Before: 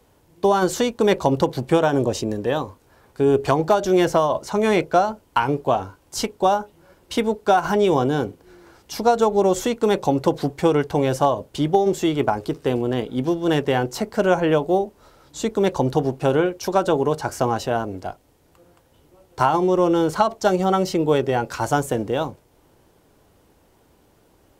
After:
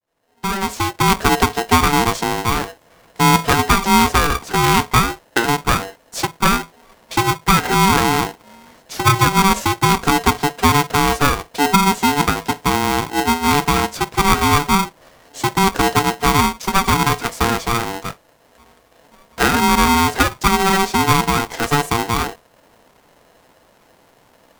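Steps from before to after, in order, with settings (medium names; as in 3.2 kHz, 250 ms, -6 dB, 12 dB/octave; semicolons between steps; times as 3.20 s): fade-in on the opening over 1.25 s; bass shelf 470 Hz +5 dB; polarity switched at an audio rate 580 Hz; trim +1 dB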